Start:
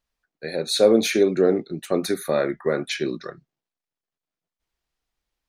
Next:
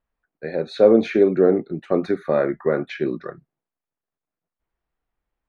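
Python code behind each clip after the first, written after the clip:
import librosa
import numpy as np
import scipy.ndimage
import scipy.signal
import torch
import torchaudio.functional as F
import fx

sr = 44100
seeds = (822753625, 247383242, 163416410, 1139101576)

y = scipy.signal.sosfilt(scipy.signal.butter(2, 1700.0, 'lowpass', fs=sr, output='sos'), x)
y = y * 10.0 ** (2.5 / 20.0)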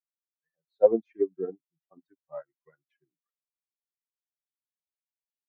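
y = fx.bin_expand(x, sr, power=3.0)
y = fx.low_shelf(y, sr, hz=140.0, db=-8.5)
y = fx.upward_expand(y, sr, threshold_db=-39.0, expansion=2.5)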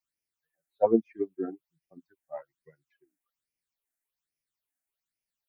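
y = fx.phaser_stages(x, sr, stages=8, low_hz=130.0, high_hz=1200.0, hz=1.2, feedback_pct=35)
y = y * 10.0 ** (7.5 / 20.0)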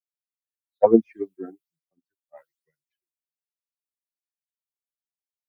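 y = fx.band_widen(x, sr, depth_pct=100)
y = y * 10.0 ** (-1.5 / 20.0)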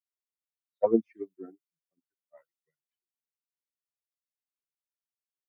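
y = fx.notch_comb(x, sr, f0_hz=810.0)
y = y * 10.0 ** (-8.0 / 20.0)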